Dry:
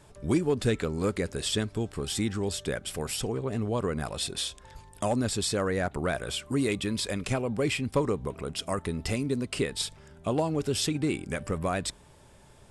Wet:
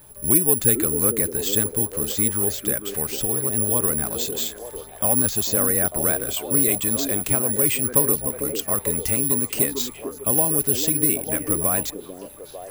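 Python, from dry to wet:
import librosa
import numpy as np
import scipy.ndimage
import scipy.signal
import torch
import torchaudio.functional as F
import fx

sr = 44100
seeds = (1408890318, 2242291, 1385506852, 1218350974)

y = (np.kron(scipy.signal.resample_poly(x, 1, 4), np.eye(4)[0]) * 4)[:len(x)]
y = fx.echo_stepped(y, sr, ms=448, hz=340.0, octaves=0.7, feedback_pct=70, wet_db=-3.5)
y = y * 10.0 ** (1.5 / 20.0)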